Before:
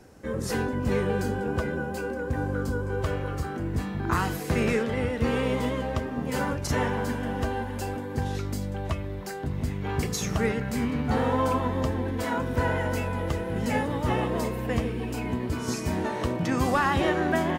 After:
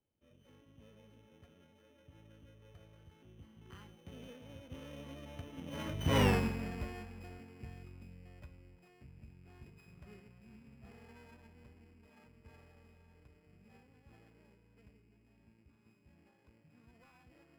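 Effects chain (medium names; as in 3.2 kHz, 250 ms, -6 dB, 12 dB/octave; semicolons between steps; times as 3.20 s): sorted samples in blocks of 16 samples; Doppler pass-by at 6.26 s, 33 m/s, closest 3 m; tone controls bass +4 dB, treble -9 dB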